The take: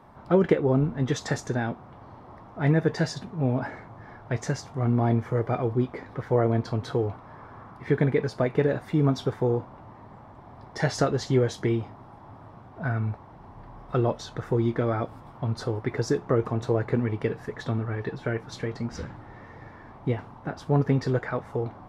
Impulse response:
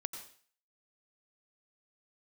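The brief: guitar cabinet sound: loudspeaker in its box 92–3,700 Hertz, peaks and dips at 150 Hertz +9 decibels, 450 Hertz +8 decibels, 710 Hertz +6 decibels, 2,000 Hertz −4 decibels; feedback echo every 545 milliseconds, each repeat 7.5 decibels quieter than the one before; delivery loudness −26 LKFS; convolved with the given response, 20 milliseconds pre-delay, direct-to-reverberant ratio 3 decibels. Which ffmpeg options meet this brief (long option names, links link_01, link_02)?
-filter_complex "[0:a]aecho=1:1:545|1090|1635|2180|2725:0.422|0.177|0.0744|0.0312|0.0131,asplit=2[link_01][link_02];[1:a]atrim=start_sample=2205,adelay=20[link_03];[link_02][link_03]afir=irnorm=-1:irlink=0,volume=-2.5dB[link_04];[link_01][link_04]amix=inputs=2:normalize=0,highpass=92,equalizer=frequency=150:width_type=q:width=4:gain=9,equalizer=frequency=450:width_type=q:width=4:gain=8,equalizer=frequency=710:width_type=q:width=4:gain=6,equalizer=frequency=2000:width_type=q:width=4:gain=-4,lowpass=frequency=3700:width=0.5412,lowpass=frequency=3700:width=1.3066,volume=-5.5dB"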